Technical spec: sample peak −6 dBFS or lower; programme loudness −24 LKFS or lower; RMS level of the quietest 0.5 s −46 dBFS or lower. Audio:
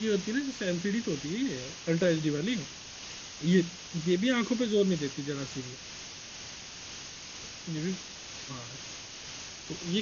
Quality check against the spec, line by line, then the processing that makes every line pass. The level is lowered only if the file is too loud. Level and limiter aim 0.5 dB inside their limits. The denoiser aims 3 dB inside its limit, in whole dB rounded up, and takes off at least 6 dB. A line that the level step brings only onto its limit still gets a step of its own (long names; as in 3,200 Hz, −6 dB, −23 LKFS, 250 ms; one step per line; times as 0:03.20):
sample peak −12.5 dBFS: in spec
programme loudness −32.5 LKFS: in spec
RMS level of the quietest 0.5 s −44 dBFS: out of spec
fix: broadband denoise 6 dB, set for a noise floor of −44 dBFS